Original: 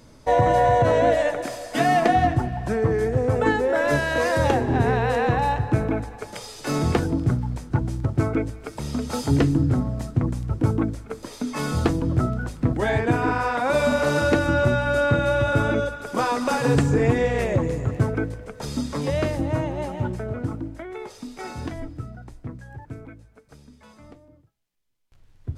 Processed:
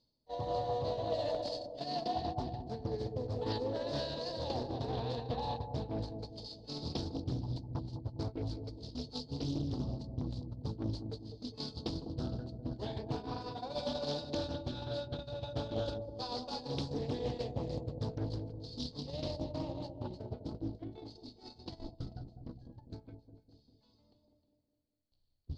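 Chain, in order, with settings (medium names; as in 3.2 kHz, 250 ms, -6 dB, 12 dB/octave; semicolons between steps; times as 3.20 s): resonant low-pass 4.4 kHz, resonance Q 13; high-order bell 1.7 kHz -13.5 dB 1.3 oct; reverse; compression 5:1, threshold -38 dBFS, peak gain reduction 21.5 dB; reverse; echo whose repeats swap between lows and highs 155 ms, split 840 Hz, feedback 55%, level -7 dB; gate -37 dBFS, range -25 dB; bucket-brigade echo 202 ms, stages 1024, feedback 54%, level -7 dB; loudspeaker Doppler distortion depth 0.47 ms; trim +1 dB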